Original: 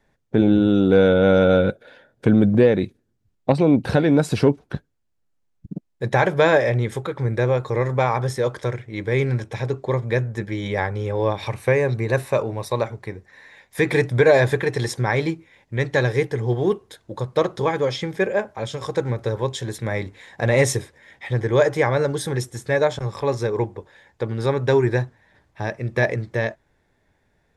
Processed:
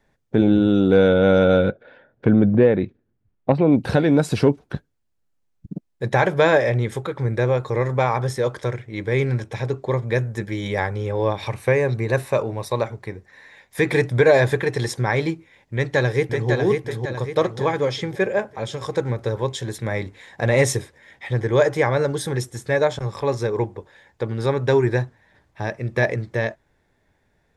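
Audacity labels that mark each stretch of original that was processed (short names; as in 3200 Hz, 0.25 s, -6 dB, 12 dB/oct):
1.690000	3.720000	LPF 2400 Hz
10.150000	10.960000	high shelf 7600 Hz +8.5 dB
15.740000	16.500000	echo throw 0.55 s, feedback 45%, level -4 dB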